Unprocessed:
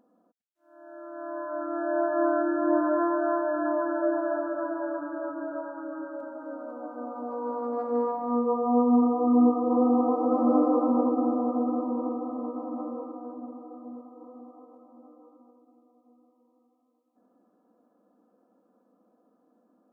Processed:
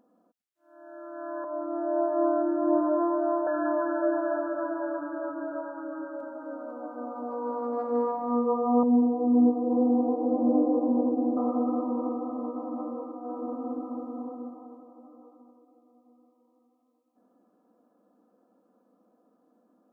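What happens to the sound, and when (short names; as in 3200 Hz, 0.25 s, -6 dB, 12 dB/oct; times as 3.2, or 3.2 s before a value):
1.44–3.47 LPF 1100 Hz 24 dB/oct
8.83–11.37 running mean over 33 samples
13.2–14.16 reverb throw, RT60 3 s, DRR -7 dB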